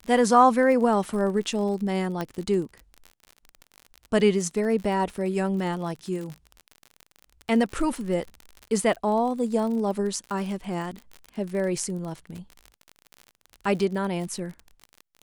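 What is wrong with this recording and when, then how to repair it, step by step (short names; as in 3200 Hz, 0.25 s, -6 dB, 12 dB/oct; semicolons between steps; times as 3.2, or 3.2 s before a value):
crackle 46/s -32 dBFS
2.21 pop -16 dBFS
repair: de-click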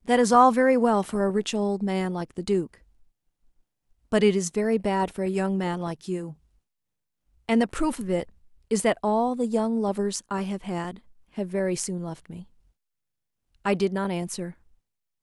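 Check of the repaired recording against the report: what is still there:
none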